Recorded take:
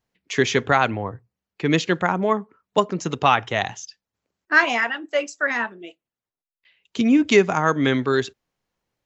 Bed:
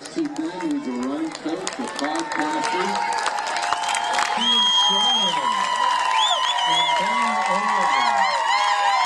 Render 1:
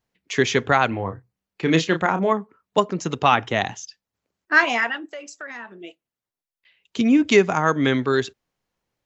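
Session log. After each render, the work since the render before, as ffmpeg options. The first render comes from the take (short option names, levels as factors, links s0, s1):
-filter_complex "[0:a]asettb=1/sr,asplit=3[s0][s1][s2];[s0]atrim=end=0.884[s3];[s1]atrim=start=0.88:end=2.32,asetpts=PTS-STARTPTS,afade=t=in:d=0.004:c=qsin,afade=t=out:st=1.436:d=0.004:c=qsin,asplit=2[s4][s5];[s5]adelay=31,volume=0.422[s6];[s4][s6]amix=inputs=2:normalize=0,atrim=end_sample=63504[s7];[s2]atrim=start=2.316[s8];[s3][s7]acrossfade=d=0.004:c1=hsin:c2=qsin[s9];[s9][s8]acrossfade=d=0.004:c1=qsin:c2=hsin,asettb=1/sr,asplit=3[s10][s11][s12];[s10]atrim=end=3.324[s13];[s11]atrim=start=3.32:end=3.75,asetpts=PTS-STARTPTS,afade=t=in:d=0.004:c=qsin,afade=t=out:st=0.426:d=0.004:c=qsin,equalizer=f=260:w=1.2:g=6[s14];[s12]atrim=start=3.746[s15];[s13][s14]acrossfade=d=0.004:c1=hsin:c2=qsin[s16];[s16][s15]acrossfade=d=0.004:c1=qsin:c2=hsin,asettb=1/sr,asplit=3[s17][s18][s19];[s17]atrim=end=5.064[s20];[s18]atrim=start=5.06:end=5.73,asetpts=PTS-STARTPTS,afade=t=in:d=0.004:c=qsin,afade=t=out:st=0.666:d=0.004:c=qsin,acompressor=threshold=0.02:ratio=4:attack=3.2:release=140:knee=1:detection=peak[s21];[s19]atrim=start=5.726[s22];[s20][s21]acrossfade=d=0.004:c1=hsin:c2=qsin[s23];[s23][s22]acrossfade=d=0.004:c1=qsin:c2=hsin"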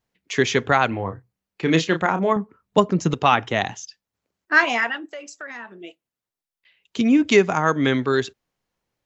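-filter_complex "[0:a]asettb=1/sr,asplit=3[s0][s1][s2];[s0]atrim=end=2.364[s3];[s1]atrim=start=2.36:end=3.14,asetpts=PTS-STARTPTS,afade=t=in:d=0.004:c=qsin,afade=t=out:st=0.776:d=0.004:c=qsin,lowshelf=f=230:g=11.5[s4];[s2]atrim=start=3.136[s5];[s3][s4]acrossfade=d=0.004:c1=hsin:c2=qsin[s6];[s6][s5]acrossfade=d=0.004:c1=qsin:c2=hsin"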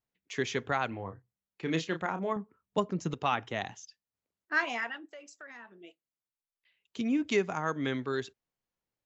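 -af "volume=0.237"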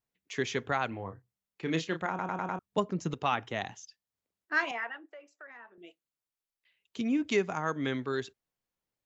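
-filter_complex "[0:a]asettb=1/sr,asplit=3[s0][s1][s2];[s0]atrim=end=4.714[s3];[s1]atrim=start=4.71:end=5.78,asetpts=PTS-STARTPTS,afade=t=in:d=0.004:c=qsin,afade=t=out:st=1.066:d=0.004:c=qsin,acrossover=split=290 2600:gain=0.0708 1 0.141[s4][s5][s6];[s4][s5][s6]amix=inputs=3:normalize=0[s7];[s2]atrim=start=5.776[s8];[s3][s7]acrossfade=d=0.004:c1=hsin:c2=qsin[s9];[s9][s8]acrossfade=d=0.004:c1=qsin:c2=hsin,asplit=6[s10][s11][s12][s13][s14][s15];[s10]atrim=end=2.192[s16];[s11]atrim=start=2.088:end=2.192[s17];[s12]atrim=start=2.088:end=2.192[s18];[s13]atrim=start=2.088:end=2.192[s19];[s14]atrim=start=2.088:end=2.192[s20];[s15]atrim=start=2.588[s21];[s16][s17]acrossfade=d=0.004:c1=hsin:c2=hsin[s22];[s22][s18]acrossfade=d=0.004:c1=hsin:c2=hsin[s23];[s23][s19]acrossfade=d=0.004:c1=hsin:c2=hsin[s24];[s24][s20]acrossfade=d=0.004:c1=hsin:c2=hsin[s25];[s25][s21]acrossfade=d=0.004:c1=hsin:c2=hsin"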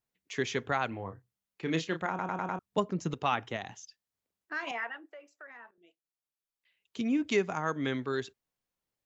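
-filter_complex "[0:a]asettb=1/sr,asplit=3[s0][s1][s2];[s0]atrim=end=3.564[s3];[s1]atrim=start=3.56:end=4.67,asetpts=PTS-STARTPTS,afade=t=in:d=0.004:c=qsin,afade=t=out:st=1.106:d=0.004:c=qsin,acompressor=threshold=0.0141:ratio=2:attack=3.2:release=140:knee=1:detection=peak[s4];[s2]atrim=start=4.666[s5];[s3][s4]acrossfade=d=0.004:c1=hsin:c2=qsin[s6];[s6][s5]acrossfade=d=0.004:c1=qsin:c2=hsin,asplit=2[s7][s8];[s7]atrim=end=5.71,asetpts=PTS-STARTPTS,afade=t=out:st=5.706:d=0.004:c=hsin:silence=0.158489[s9];[s8]atrim=start=5.71,asetpts=PTS-STARTPTS,afade=t=in:d=1.29:silence=0.158489[s10];[s9][s10]concat=n=2:v=0:a=1"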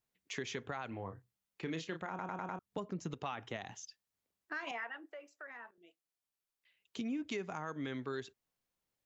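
-af "alimiter=limit=0.0891:level=0:latency=1:release=50,acompressor=threshold=0.01:ratio=2.5"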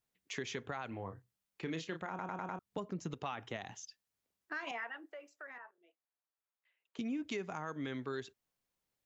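-filter_complex "[0:a]asettb=1/sr,asplit=3[s0][s1][s2];[s0]atrim=end=5.584[s3];[s1]atrim=start=5.58:end=6.99,asetpts=PTS-STARTPTS,afade=t=in:d=0.004:c=qsin,afade=t=out:st=1.406:d=0.004:c=qsin,acrossover=split=410 2100:gain=0.0794 1 0.2[s4][s5][s6];[s4][s5][s6]amix=inputs=3:normalize=0[s7];[s2]atrim=start=6.986[s8];[s3][s7]acrossfade=d=0.004:c1=hsin:c2=qsin[s9];[s9][s8]acrossfade=d=0.004:c1=qsin:c2=hsin"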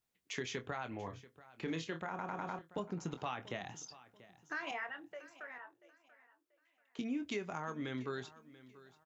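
-filter_complex "[0:a]asplit=2[s0][s1];[s1]adelay=24,volume=0.335[s2];[s0][s2]amix=inputs=2:normalize=0,aecho=1:1:686|1372|2058:0.119|0.0357|0.0107"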